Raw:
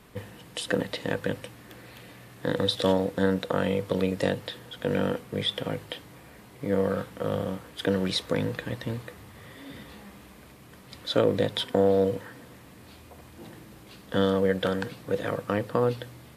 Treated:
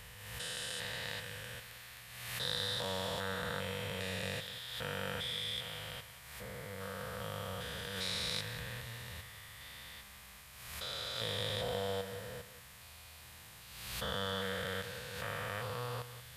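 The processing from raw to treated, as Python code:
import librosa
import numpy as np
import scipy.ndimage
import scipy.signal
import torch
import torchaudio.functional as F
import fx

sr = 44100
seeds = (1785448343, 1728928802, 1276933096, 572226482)

y = fx.spec_steps(x, sr, hold_ms=400)
y = fx.tone_stack(y, sr, knobs='10-0-10')
y = y + 10.0 ** (-13.0 / 20.0) * np.pad(y, (int(181 * sr / 1000.0), 0))[:len(y)]
y = fx.pre_swell(y, sr, db_per_s=45.0)
y = y * 10.0 ** (4.5 / 20.0)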